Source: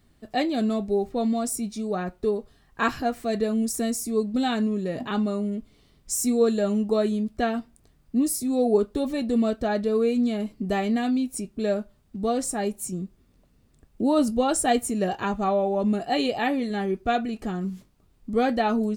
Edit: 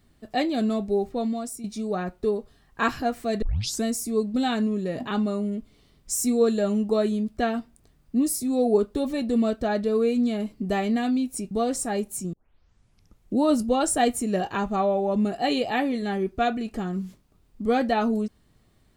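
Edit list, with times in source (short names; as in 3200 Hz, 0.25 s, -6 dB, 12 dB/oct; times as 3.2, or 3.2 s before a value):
1.05–1.64 fade out, to -10.5 dB
3.42 tape start 0.41 s
11.51–12.19 cut
13.01 tape start 1.06 s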